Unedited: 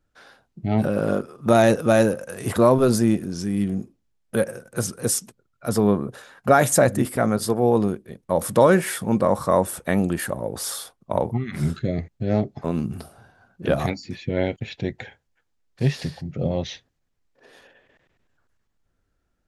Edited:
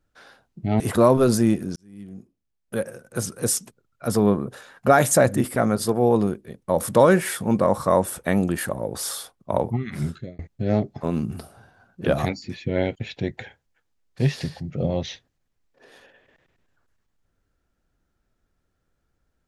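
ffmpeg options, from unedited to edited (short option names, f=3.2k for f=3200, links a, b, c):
-filter_complex "[0:a]asplit=4[a][b][c][d];[a]atrim=end=0.802[e];[b]atrim=start=2.408:end=3.37,asetpts=PTS-STARTPTS,afade=t=out:st=0.958:d=0.004:c=hsin[f];[c]atrim=start=3.37:end=12,asetpts=PTS-STARTPTS,afade=t=in:d=1.76,afade=t=out:st=7.9:d=0.73:c=qsin[g];[d]atrim=start=12,asetpts=PTS-STARTPTS,afade=t=in:d=0.004:c=hsin[h];[f][g][h]concat=n=3:v=0:a=1[i];[e][i]acrossfade=d=0.004:c1=hsin:c2=hsin"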